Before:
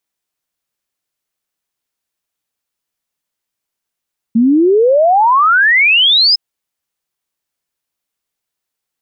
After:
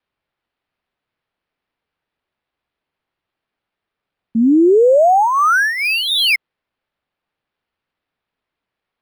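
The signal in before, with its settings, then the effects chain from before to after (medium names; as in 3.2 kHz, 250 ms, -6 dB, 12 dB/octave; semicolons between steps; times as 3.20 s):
log sweep 220 Hz -> 5.2 kHz 2.01 s -6.5 dBFS
graphic EQ with 31 bands 200 Hz -10 dB, 1 kHz -6 dB, 2 kHz -11 dB, 3.15 kHz -6 dB; vibrato 3.8 Hz 39 cents; decimation joined by straight lines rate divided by 6×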